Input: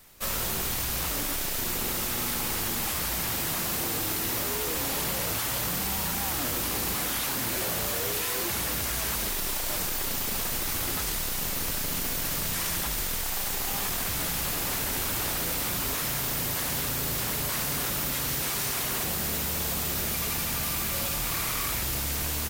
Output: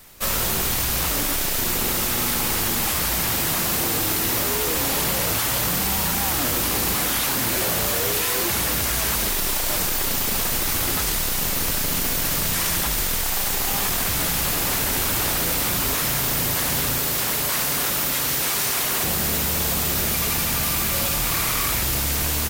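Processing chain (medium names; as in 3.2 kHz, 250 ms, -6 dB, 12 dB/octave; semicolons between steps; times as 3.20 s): 16.98–19.02 s: bass shelf 190 Hz -8.5 dB; trim +7 dB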